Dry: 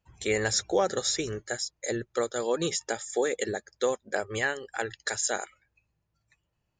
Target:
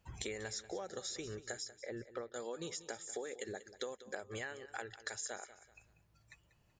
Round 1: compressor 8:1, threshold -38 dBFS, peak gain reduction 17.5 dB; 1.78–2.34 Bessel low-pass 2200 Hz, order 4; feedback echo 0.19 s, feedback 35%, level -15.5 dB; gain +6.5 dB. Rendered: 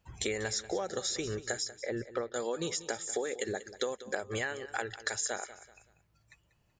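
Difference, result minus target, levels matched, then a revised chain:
compressor: peak gain reduction -9 dB
compressor 8:1, threshold -48 dBFS, peak gain reduction 26.5 dB; 1.78–2.34 Bessel low-pass 2200 Hz, order 4; feedback echo 0.19 s, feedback 35%, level -15.5 dB; gain +6.5 dB

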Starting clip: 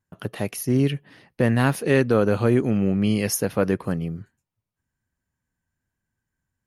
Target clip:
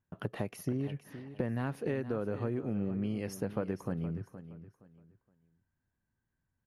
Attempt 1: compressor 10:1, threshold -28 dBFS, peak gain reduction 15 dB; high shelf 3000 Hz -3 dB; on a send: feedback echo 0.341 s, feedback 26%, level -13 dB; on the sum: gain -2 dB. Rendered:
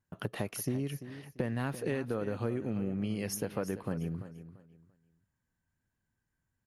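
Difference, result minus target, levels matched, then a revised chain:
8000 Hz band +9.5 dB; echo 0.128 s early
compressor 10:1, threshold -28 dBFS, peak gain reduction 15 dB; high shelf 3000 Hz -14 dB; on a send: feedback echo 0.469 s, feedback 26%, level -13 dB; on the sum: gain -2 dB

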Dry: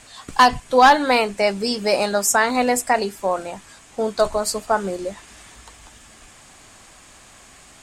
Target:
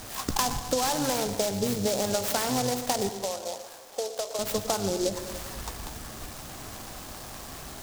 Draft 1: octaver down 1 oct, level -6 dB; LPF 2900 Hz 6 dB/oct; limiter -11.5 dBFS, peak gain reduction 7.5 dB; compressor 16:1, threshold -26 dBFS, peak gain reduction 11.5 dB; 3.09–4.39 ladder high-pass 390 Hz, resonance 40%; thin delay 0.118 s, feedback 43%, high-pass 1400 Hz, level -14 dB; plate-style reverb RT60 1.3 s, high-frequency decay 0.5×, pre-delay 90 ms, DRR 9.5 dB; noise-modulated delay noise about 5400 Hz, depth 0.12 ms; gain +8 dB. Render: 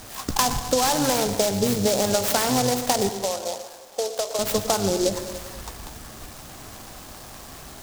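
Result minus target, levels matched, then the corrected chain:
compressor: peak gain reduction -5.5 dB
octaver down 1 oct, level -6 dB; LPF 2900 Hz 6 dB/oct; limiter -11.5 dBFS, peak gain reduction 7.5 dB; compressor 16:1, threshold -32 dBFS, peak gain reduction 17 dB; 3.09–4.39 ladder high-pass 390 Hz, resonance 40%; thin delay 0.118 s, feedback 43%, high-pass 1400 Hz, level -14 dB; plate-style reverb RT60 1.3 s, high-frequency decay 0.5×, pre-delay 90 ms, DRR 9.5 dB; noise-modulated delay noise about 5400 Hz, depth 0.12 ms; gain +8 dB

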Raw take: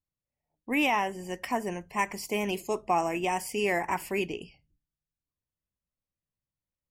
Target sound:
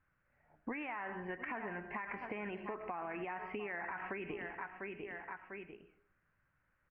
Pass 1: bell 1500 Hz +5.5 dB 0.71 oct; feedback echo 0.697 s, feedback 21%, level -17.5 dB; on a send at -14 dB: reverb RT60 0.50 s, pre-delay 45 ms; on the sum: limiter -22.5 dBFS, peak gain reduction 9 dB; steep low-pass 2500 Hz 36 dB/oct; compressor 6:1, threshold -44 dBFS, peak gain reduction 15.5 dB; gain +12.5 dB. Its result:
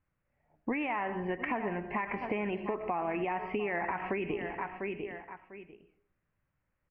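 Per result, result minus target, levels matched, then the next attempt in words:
compressor: peak gain reduction -8.5 dB; 2000 Hz band -3.5 dB
bell 1500 Hz +5.5 dB 0.71 oct; feedback echo 0.697 s, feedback 21%, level -17.5 dB; on a send at -14 dB: reverb RT60 0.50 s, pre-delay 45 ms; on the sum: limiter -22.5 dBFS, peak gain reduction 9 dB; steep low-pass 2500 Hz 36 dB/oct; compressor 6:1, threshold -54.5 dBFS, peak gain reduction 24 dB; gain +12.5 dB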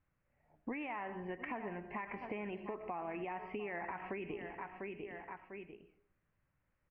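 2000 Hz band -3.0 dB
bell 1500 Hz +17.5 dB 0.71 oct; feedback echo 0.697 s, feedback 21%, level -17.5 dB; on a send at -14 dB: reverb RT60 0.50 s, pre-delay 45 ms; on the sum: limiter -22.5 dBFS, peak gain reduction 14 dB; steep low-pass 2500 Hz 36 dB/oct; compressor 6:1, threshold -54.5 dBFS, peak gain reduction 24 dB; gain +12.5 dB

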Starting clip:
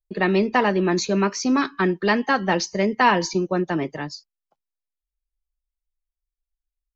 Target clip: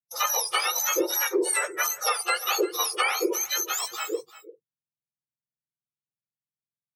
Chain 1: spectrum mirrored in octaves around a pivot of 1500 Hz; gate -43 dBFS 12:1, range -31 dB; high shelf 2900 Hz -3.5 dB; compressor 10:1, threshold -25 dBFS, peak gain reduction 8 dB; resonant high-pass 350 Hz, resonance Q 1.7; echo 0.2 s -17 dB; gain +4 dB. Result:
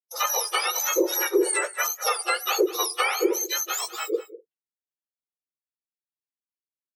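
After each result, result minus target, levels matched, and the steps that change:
125 Hz band -10.0 dB; echo 0.147 s early
change: resonant high-pass 140 Hz, resonance Q 1.7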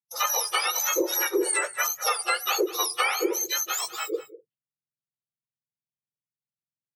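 echo 0.147 s early
change: echo 0.347 s -17 dB

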